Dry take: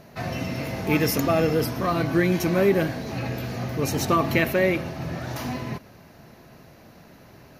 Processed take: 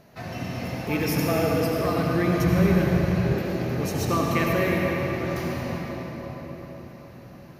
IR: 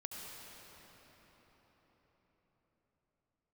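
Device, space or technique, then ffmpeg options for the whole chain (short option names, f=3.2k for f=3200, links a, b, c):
cathedral: -filter_complex "[1:a]atrim=start_sample=2205[a];[0:a][a]afir=irnorm=-1:irlink=0,asplit=3[b][c][d];[b]afade=t=out:st=2.38:d=0.02[e];[c]asubboost=boost=6.5:cutoff=120,afade=t=in:st=2.38:d=0.02,afade=t=out:st=3.33:d=0.02[f];[d]afade=t=in:st=3.33:d=0.02[g];[e][f][g]amix=inputs=3:normalize=0"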